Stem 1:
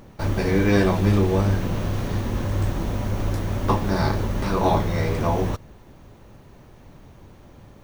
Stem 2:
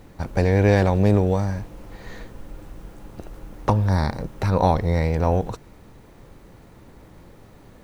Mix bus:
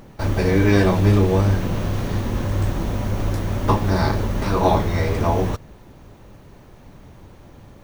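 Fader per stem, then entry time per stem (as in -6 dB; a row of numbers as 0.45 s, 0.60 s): +2.0 dB, -7.5 dB; 0.00 s, 0.00 s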